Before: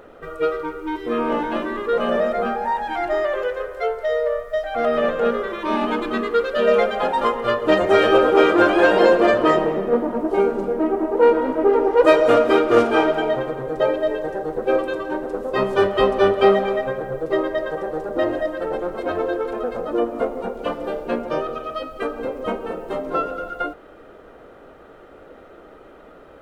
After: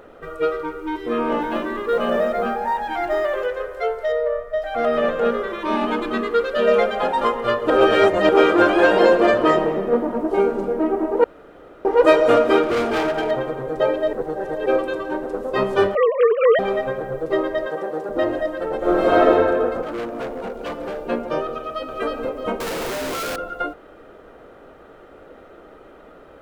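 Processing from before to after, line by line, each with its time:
1.41–3.46 companded quantiser 8-bit
4.12–4.62 high shelf 3500 Hz -12 dB
7.7–8.29 reverse
11.24–11.85 room tone
12.63–13.31 hard clip -18 dBFS
14.13–14.66 reverse
15.95–16.59 sine-wave speech
17.67–18.09 HPF 160 Hz
18.78–19.3 reverb throw, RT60 1.8 s, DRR -10 dB
19.82–20.98 hard clip -25 dBFS
21.57–21.98 echo throw 0.31 s, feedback 30%, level -1.5 dB
22.6–23.36 infinite clipping

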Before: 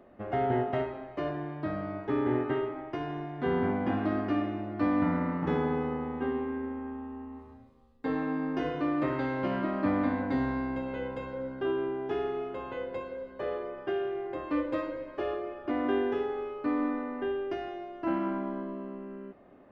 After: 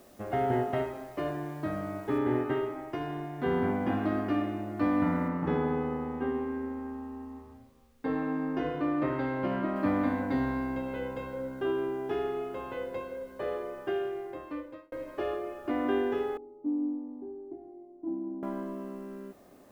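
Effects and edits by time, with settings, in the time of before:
2.18 noise floor step -63 dB -69 dB
5.28–9.76 high shelf 3900 Hz -8.5 dB
13.97–14.92 fade out
16.37–18.43 vocal tract filter u

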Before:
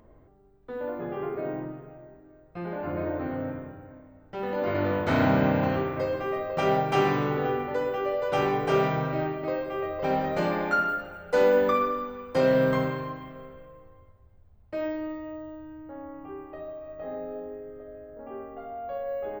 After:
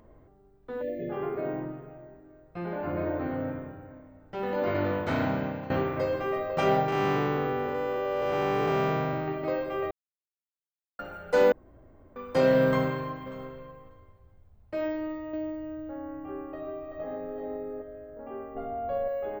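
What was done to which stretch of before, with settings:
0.82–1.1 spectral delete 700–1700 Hz
4.64–5.7 fade out, to -15.5 dB
6.88–9.28 time blur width 0.31 s
9.91–10.99 mute
11.52–12.16 room tone
12.67–13.3 echo throw 0.59 s, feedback 10%, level -17 dB
14.95–17.82 echo 0.383 s -4.5 dB
18.55–19.08 low shelf 460 Hz +9.5 dB

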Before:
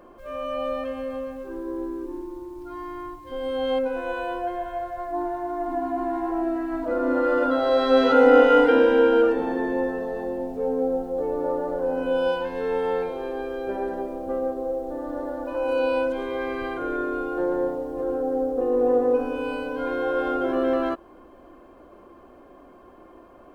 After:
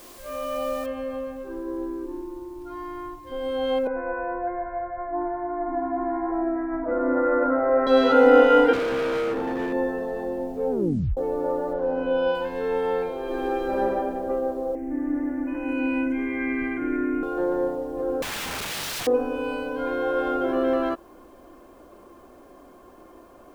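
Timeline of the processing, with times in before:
0.86 noise floor step -48 dB -68 dB
3.87–7.87 steep low-pass 2300 Hz 96 dB/oct
8.73–9.73 overloaded stage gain 23.5 dB
10.71 tape stop 0.46 s
11.73–12.35 LPF 4000 Hz
13.23–13.81 reverb throw, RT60 2.2 s, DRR -6 dB
14.75–17.23 EQ curve 190 Hz 0 dB, 280 Hz +11 dB, 490 Hz -14 dB, 750 Hz -7 dB, 1300 Hz -8 dB, 2100 Hz +13 dB, 3800 Hz -21 dB, 5900 Hz -7 dB
18.22–19.07 wrapped overs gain 26.5 dB

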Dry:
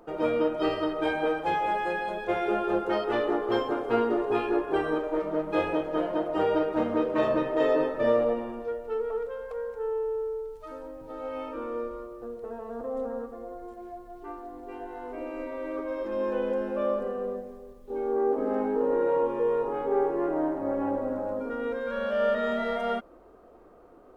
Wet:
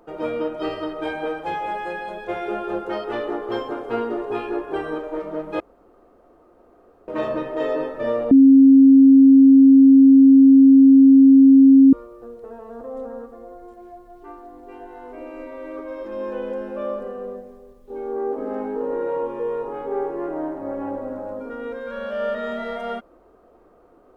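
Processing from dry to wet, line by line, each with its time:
5.6–7.08 room tone
8.31–11.93 bleep 270 Hz -6.5 dBFS

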